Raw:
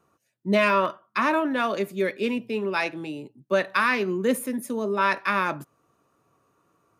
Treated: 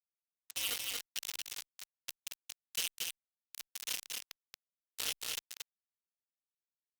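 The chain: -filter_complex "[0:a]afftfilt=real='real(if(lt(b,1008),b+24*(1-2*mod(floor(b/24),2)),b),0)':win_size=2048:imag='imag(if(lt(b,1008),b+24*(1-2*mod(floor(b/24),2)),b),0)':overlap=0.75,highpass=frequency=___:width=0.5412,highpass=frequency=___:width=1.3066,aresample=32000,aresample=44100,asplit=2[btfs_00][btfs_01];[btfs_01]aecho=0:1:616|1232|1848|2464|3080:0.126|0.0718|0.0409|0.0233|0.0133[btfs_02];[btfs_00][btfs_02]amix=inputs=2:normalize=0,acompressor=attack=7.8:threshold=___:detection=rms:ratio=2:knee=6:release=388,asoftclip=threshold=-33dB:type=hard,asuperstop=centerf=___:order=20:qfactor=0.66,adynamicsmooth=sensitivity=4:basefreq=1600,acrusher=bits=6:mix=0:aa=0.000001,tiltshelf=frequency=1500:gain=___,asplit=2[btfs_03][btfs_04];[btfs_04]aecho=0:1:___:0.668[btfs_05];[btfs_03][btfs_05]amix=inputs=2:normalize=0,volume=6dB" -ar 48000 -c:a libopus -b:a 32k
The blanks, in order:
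640, 640, -32dB, 1300, -10, 229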